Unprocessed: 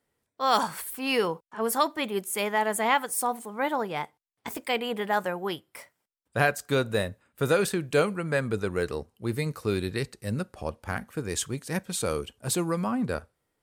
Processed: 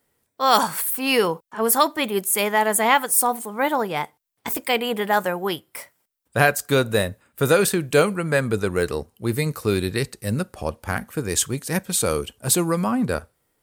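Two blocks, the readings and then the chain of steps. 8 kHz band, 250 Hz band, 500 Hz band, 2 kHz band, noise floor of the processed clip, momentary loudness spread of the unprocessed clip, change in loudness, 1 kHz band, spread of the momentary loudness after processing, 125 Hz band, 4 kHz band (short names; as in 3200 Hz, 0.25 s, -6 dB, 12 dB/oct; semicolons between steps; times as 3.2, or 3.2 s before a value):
+10.5 dB, +6.0 dB, +6.0 dB, +6.5 dB, -73 dBFS, 10 LU, +7.0 dB, +6.0 dB, 10 LU, +6.0 dB, +7.0 dB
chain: high shelf 10000 Hz +10.5 dB; gain +6 dB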